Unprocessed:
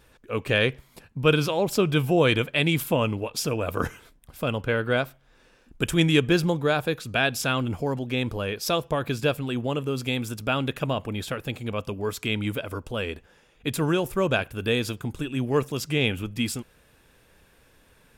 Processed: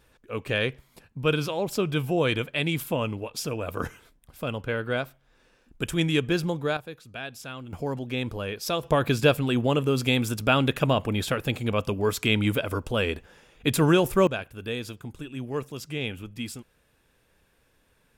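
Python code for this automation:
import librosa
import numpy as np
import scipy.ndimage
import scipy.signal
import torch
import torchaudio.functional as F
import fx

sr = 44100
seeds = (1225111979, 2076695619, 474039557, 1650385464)

y = fx.gain(x, sr, db=fx.steps((0.0, -4.0), (6.77, -13.5), (7.73, -3.0), (8.83, 4.0), (14.27, -7.5)))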